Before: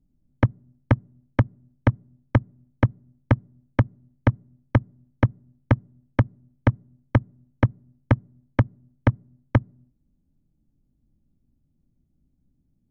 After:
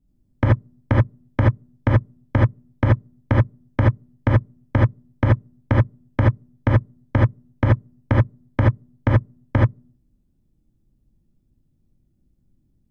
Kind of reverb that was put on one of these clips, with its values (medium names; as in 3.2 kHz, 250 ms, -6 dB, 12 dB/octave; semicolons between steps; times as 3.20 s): gated-style reverb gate 100 ms rising, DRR -4 dB; trim -1.5 dB